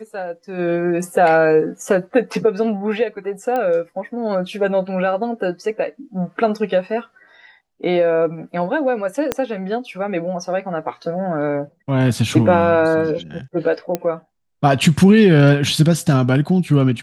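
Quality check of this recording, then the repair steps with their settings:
0:03.56: click −12 dBFS
0:09.32: click −5 dBFS
0:13.95: click −7 dBFS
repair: click removal

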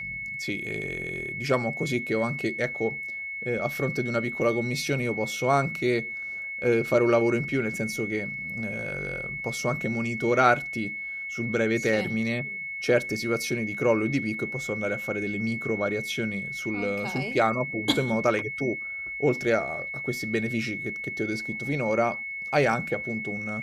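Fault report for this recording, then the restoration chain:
whistle 2,200 Hz −32 dBFS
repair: notch filter 2,200 Hz, Q 30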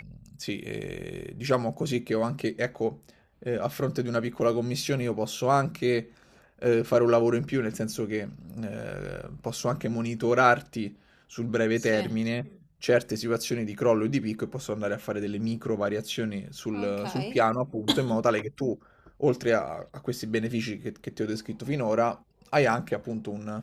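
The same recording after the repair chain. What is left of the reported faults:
none of them is left

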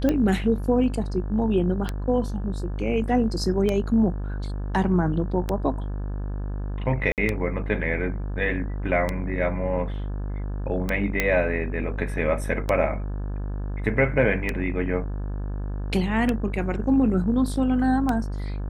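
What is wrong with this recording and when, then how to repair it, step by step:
mains buzz 50 Hz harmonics 35 −29 dBFS
scratch tick 33 1/3 rpm −11 dBFS
0:07.12–0:07.18: drop-out 58 ms
0:11.20: click −7 dBFS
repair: click removal
hum removal 50 Hz, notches 35
repair the gap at 0:07.12, 58 ms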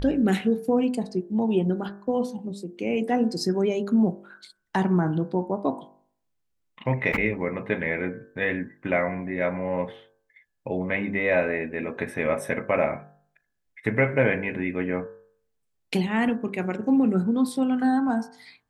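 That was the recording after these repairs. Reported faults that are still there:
none of them is left

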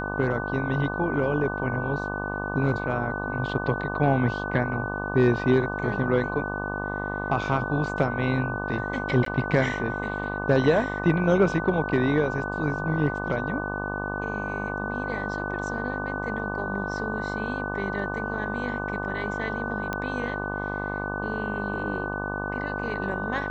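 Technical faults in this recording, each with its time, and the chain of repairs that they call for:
mains buzz 50 Hz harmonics 24 −32 dBFS
whistle 1,500 Hz −32 dBFS
0:09.25–0:09.26: drop-out 13 ms
0:19.93: click −15 dBFS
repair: click removal
hum removal 50 Hz, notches 24
notch filter 1,500 Hz, Q 30
repair the gap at 0:09.25, 13 ms

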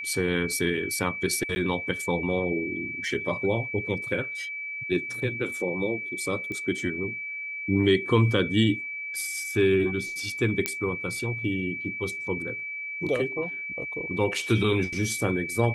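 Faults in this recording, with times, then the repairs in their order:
whistle 2,300 Hz −32 dBFS
0:01.55–0:01.56: drop-out 10 ms
0:06.52: click −23 dBFS
0:10.66: click −7 dBFS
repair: click removal
notch filter 2,300 Hz, Q 30
repair the gap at 0:01.55, 10 ms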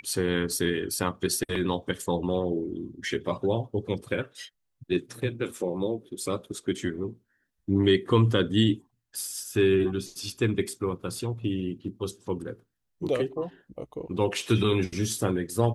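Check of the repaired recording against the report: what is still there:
none of them is left

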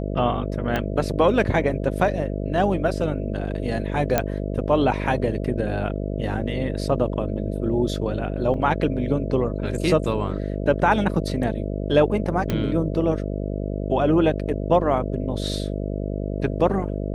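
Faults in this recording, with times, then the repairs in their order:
mains buzz 50 Hz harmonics 13 −27 dBFS
0:00.76: click −11 dBFS
0:04.18: click −5 dBFS
0:08.54: drop-out 3.8 ms
0:12.50: click −11 dBFS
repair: click removal
hum removal 50 Hz, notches 13
repair the gap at 0:08.54, 3.8 ms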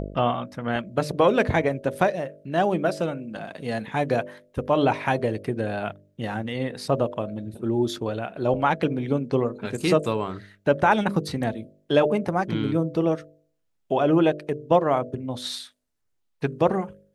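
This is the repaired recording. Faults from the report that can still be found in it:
0:00.76: click

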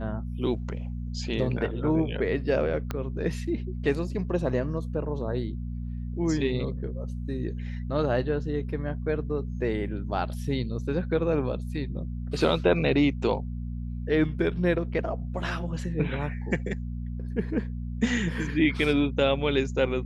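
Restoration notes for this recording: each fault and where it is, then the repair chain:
mains hum 60 Hz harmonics 4 −33 dBFS
0:02.91: click −16 dBFS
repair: click removal
hum removal 60 Hz, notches 4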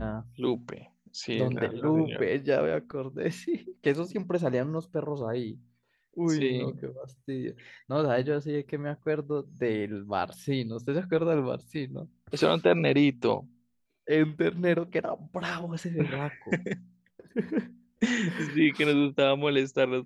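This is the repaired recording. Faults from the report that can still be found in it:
0:02.91: click

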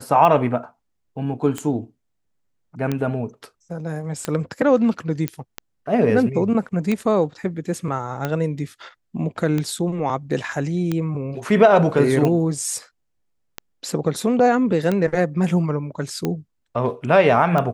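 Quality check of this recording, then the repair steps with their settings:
scratch tick 45 rpm −10 dBFS
0:05.28: click −8 dBFS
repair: click removal

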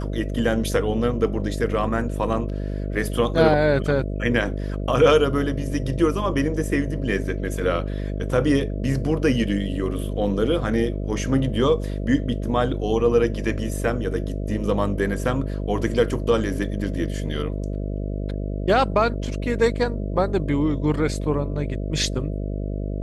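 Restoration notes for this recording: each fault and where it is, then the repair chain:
mains buzz 50 Hz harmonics 13 −27 dBFS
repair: hum removal 50 Hz, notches 13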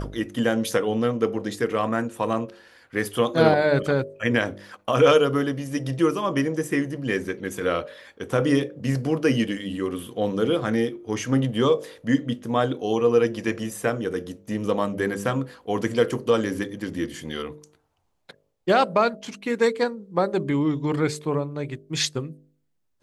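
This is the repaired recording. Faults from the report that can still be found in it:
none of them is left

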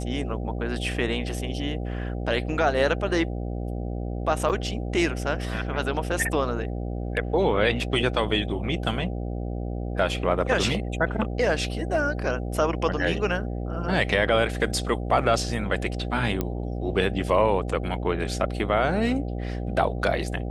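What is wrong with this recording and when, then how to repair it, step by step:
mains buzz 60 Hz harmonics 13 −30 dBFS
0:04.49–0:04.50: drop-out 7 ms
0:16.41: click −12 dBFS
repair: click removal
hum removal 60 Hz, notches 13
repair the gap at 0:04.49, 7 ms

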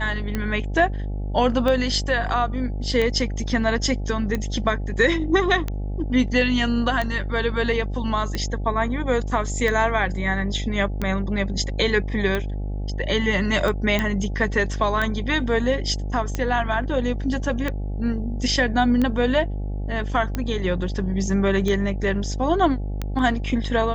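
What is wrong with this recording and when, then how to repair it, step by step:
mains buzz 50 Hz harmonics 17 −27 dBFS
scratch tick 45 rpm −12 dBFS
0:13.99: click −9 dBFS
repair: click removal
hum removal 50 Hz, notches 17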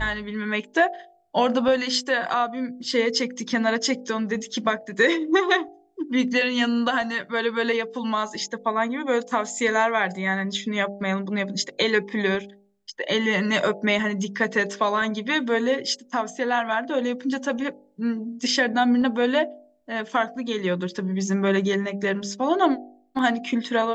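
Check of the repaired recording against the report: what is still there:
none of them is left

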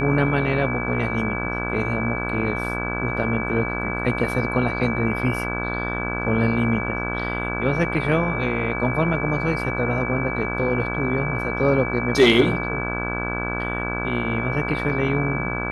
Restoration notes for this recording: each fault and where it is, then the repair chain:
mains buzz 60 Hz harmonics 28 −28 dBFS
whistle 2,300 Hz −28 dBFS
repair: notch filter 2,300 Hz, Q 30
hum removal 60 Hz, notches 28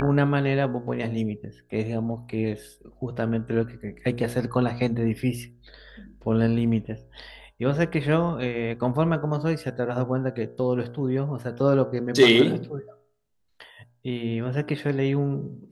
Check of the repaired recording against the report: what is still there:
none of them is left

